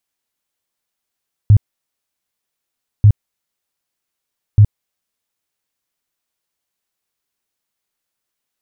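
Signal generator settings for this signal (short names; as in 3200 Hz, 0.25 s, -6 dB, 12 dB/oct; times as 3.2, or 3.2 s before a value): tone bursts 104 Hz, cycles 7, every 1.54 s, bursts 3, -3.5 dBFS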